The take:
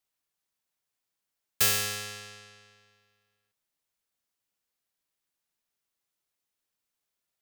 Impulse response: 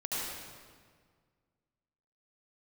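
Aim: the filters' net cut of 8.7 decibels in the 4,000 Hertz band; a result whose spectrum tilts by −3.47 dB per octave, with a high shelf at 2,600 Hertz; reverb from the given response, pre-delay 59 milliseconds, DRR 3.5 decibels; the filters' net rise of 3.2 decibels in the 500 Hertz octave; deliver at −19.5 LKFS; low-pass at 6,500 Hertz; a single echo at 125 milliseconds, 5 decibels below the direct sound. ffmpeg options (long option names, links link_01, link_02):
-filter_complex "[0:a]lowpass=6500,equalizer=frequency=500:width_type=o:gain=4,highshelf=frequency=2600:gain=-8,equalizer=frequency=4000:width_type=o:gain=-3.5,aecho=1:1:125:0.562,asplit=2[link_01][link_02];[1:a]atrim=start_sample=2205,adelay=59[link_03];[link_02][link_03]afir=irnorm=-1:irlink=0,volume=-9dB[link_04];[link_01][link_04]amix=inputs=2:normalize=0,volume=13.5dB"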